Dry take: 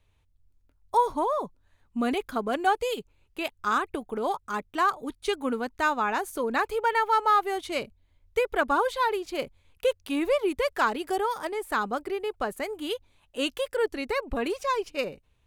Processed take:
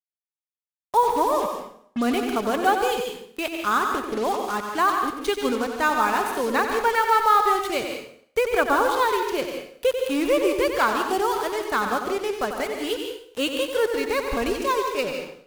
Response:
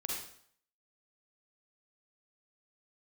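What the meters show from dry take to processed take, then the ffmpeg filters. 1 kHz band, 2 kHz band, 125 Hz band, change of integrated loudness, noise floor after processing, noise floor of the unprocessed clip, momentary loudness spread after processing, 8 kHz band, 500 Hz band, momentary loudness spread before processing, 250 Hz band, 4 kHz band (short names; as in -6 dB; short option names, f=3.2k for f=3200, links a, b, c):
+4.5 dB, +4.5 dB, n/a, +4.5 dB, under -85 dBFS, -67 dBFS, 8 LU, +8.5 dB, +5.0 dB, 9 LU, +5.0 dB, +5.5 dB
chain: -filter_complex "[0:a]acrusher=bits=5:mix=0:aa=0.5,asplit=2[a][b];[1:a]atrim=start_sample=2205,adelay=92[c];[b][c]afir=irnorm=-1:irlink=0,volume=-5dB[d];[a][d]amix=inputs=2:normalize=0,volume=3dB"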